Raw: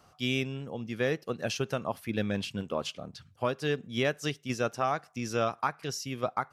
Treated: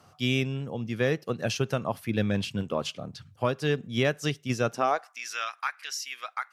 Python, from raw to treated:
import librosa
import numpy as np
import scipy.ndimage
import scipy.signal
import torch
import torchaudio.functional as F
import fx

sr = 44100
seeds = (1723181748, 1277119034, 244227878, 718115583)

y = fx.filter_sweep_highpass(x, sr, from_hz=100.0, to_hz=1800.0, start_s=4.66, end_s=5.2, q=1.6)
y = fx.cheby_harmonics(y, sr, harmonics=(4, 6), levels_db=(-36, -45), full_scale_db=-13.5)
y = F.gain(torch.from_numpy(y), 2.5).numpy()